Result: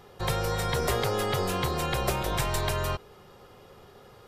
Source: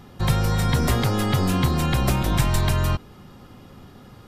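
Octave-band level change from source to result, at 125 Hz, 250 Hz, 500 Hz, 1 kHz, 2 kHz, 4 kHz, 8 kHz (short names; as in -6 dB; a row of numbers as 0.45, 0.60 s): -11.0, -11.5, 0.0, -2.5, -3.5, -3.5, -3.5 dB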